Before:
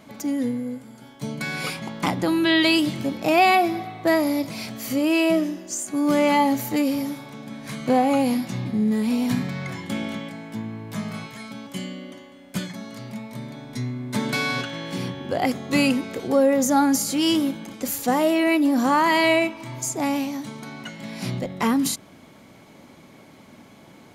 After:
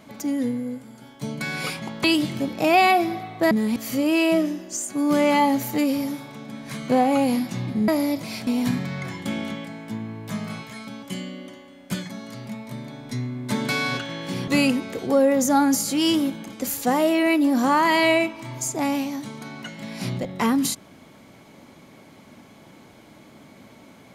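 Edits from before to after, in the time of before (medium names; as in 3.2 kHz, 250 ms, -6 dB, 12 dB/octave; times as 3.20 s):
2.04–2.68 s: delete
4.15–4.74 s: swap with 8.86–9.11 s
15.12–15.69 s: delete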